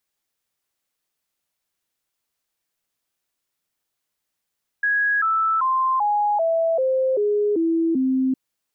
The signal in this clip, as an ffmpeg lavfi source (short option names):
-f lavfi -i "aevalsrc='0.141*clip(min(mod(t,0.39),0.39-mod(t,0.39))/0.005,0,1)*sin(2*PI*1660*pow(2,-floor(t/0.39)/3)*mod(t,0.39))':d=3.51:s=44100"